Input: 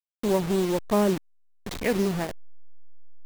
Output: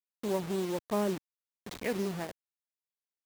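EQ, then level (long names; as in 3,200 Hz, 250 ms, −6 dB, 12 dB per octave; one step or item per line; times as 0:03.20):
high-pass filter 130 Hz 6 dB per octave
−7.5 dB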